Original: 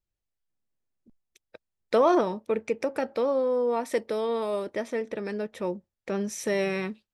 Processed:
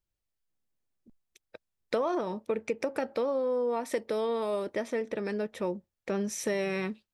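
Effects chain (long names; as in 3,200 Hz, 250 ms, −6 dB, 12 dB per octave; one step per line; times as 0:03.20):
downward compressor 6 to 1, threshold −26 dBFS, peak gain reduction 10 dB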